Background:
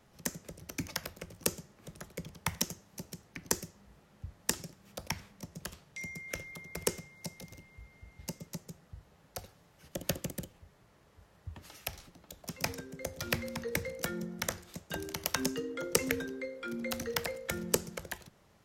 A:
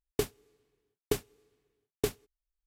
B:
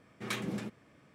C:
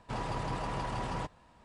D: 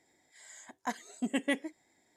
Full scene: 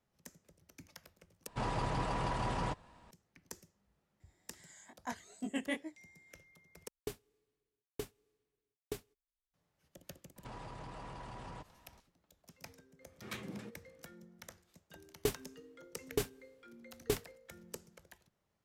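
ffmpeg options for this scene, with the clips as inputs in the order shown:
-filter_complex "[3:a]asplit=2[s0][s1];[1:a]asplit=2[s2][s3];[0:a]volume=0.126[s4];[4:a]flanger=delay=19:depth=4.1:speed=2.4[s5];[s1]acompressor=threshold=0.01:ratio=6:attack=3.2:release=140:knee=1:detection=peak[s6];[s3]alimiter=limit=0.126:level=0:latency=1:release=28[s7];[s4]asplit=3[s8][s9][s10];[s8]atrim=end=1.474[s11];[s0]atrim=end=1.64[s12];[s9]atrim=start=3.106:end=6.884[s13];[s2]atrim=end=2.66,asetpts=PTS-STARTPTS,volume=0.251[s14];[s10]atrim=start=9.536[s15];[s5]atrim=end=2.16,asetpts=PTS-STARTPTS,volume=0.708,afade=t=in:d=0.004:c=hsin,afade=t=out:st=2.156:d=0.004:c=hsin,adelay=4200[s16];[s6]atrim=end=1.64,asetpts=PTS-STARTPTS,volume=0.631,afade=t=in:d=0.004:c=hsin,afade=t=out:st=1.636:d=0.004:c=hsin,adelay=10360[s17];[2:a]atrim=end=1.14,asetpts=PTS-STARTPTS,volume=0.355,afade=t=in:d=0.004:c=hsin,afade=t=out:st=1.136:d=0.004:c=hsin,adelay=13010[s18];[s7]atrim=end=2.66,asetpts=PTS-STARTPTS,volume=0.891,afade=t=in:d=0.004:c=hsin,afade=t=out:st=2.656:d=0.004:c=hsin,adelay=15060[s19];[s11][s12]acrossfade=d=0.004:c1=hsin:c2=hsin[s20];[s20][s13]acrossfade=d=0.004:c1=hsin:c2=hsin[s21];[s21][s14]acrossfade=d=0.004:c1=hsin:c2=hsin[s22];[s22][s15]acrossfade=d=0.004:c1=hsin:c2=hsin[s23];[s23][s16][s17][s18][s19]amix=inputs=5:normalize=0"

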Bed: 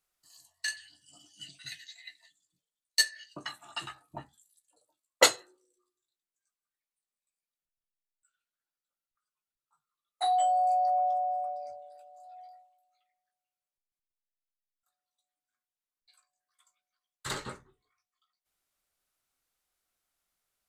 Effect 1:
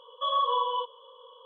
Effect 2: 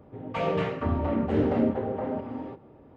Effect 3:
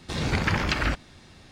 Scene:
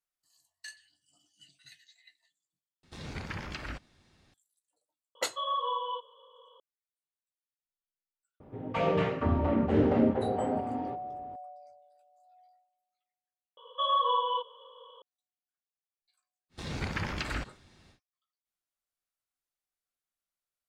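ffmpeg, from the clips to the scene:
-filter_complex "[3:a]asplit=2[s0][s1];[1:a]asplit=2[s2][s3];[0:a]volume=0.251[s4];[s3]equalizer=f=2100:w=5.2:g=13[s5];[s4]asplit=3[s6][s7][s8];[s6]atrim=end=2.834[s9];[s0]atrim=end=1.51,asetpts=PTS-STARTPTS,volume=0.188[s10];[s7]atrim=start=4.336:end=13.574[s11];[s5]atrim=end=1.45,asetpts=PTS-STARTPTS,volume=0.891[s12];[s8]atrim=start=15.016[s13];[s2]atrim=end=1.45,asetpts=PTS-STARTPTS,volume=0.531,afade=t=in:d=0.004:c=hsin,afade=t=out:st=1.446:d=0.004:c=hsin,adelay=5150[s14];[2:a]atrim=end=2.96,asetpts=PTS-STARTPTS,volume=0.944,afade=t=in:d=0.004:c=hsin,afade=t=out:st=2.956:d=0.004:c=hsin,adelay=8400[s15];[s1]atrim=end=1.51,asetpts=PTS-STARTPTS,volume=0.335,afade=t=in:d=0.1,afade=t=out:st=1.41:d=0.1,adelay=16490[s16];[s9][s10]acrossfade=d=0.004:c1=hsin:c2=hsin[s17];[s17][s11]acrossfade=d=0.004:c1=hsin:c2=hsin[s18];[s18][s12]acrossfade=d=0.004:c1=hsin:c2=hsin[s19];[s19][s13]acrossfade=d=0.004:c1=hsin:c2=hsin[s20];[s20][s14][s15][s16]amix=inputs=4:normalize=0"

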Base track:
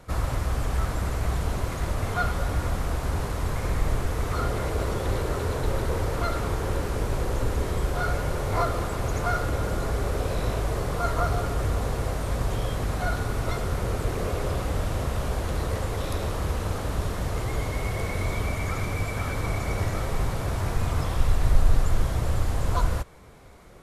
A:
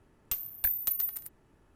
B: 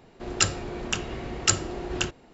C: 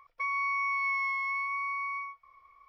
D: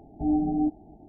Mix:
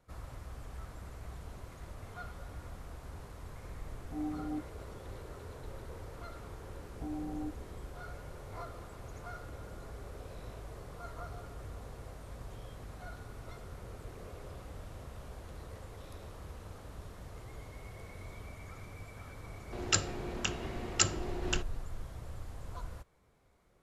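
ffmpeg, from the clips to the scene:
-filter_complex "[4:a]asplit=2[s0][s1];[0:a]volume=0.106[s2];[s1]alimiter=limit=0.0668:level=0:latency=1:release=71[s3];[s0]atrim=end=1.08,asetpts=PTS-STARTPTS,volume=0.211,afade=t=in:d=0.004:c=hsin,afade=t=out:st=1.076:d=0.004:c=hsin,adelay=3910[s4];[s3]atrim=end=1.08,asetpts=PTS-STARTPTS,volume=0.299,afade=t=in:d=0.004:c=hsin,afade=t=out:st=1.076:d=0.004:c=hsin,adelay=6810[s5];[2:a]atrim=end=2.33,asetpts=PTS-STARTPTS,volume=0.501,afade=t=in:d=0.004:c=hsin,afade=t=out:st=2.326:d=0.004:c=hsin,adelay=19520[s6];[s2][s4][s5][s6]amix=inputs=4:normalize=0"

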